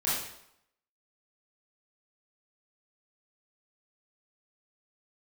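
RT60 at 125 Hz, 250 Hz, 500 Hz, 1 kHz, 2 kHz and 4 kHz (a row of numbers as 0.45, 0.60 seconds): 0.65, 0.70, 0.75, 0.80, 0.70, 0.65 seconds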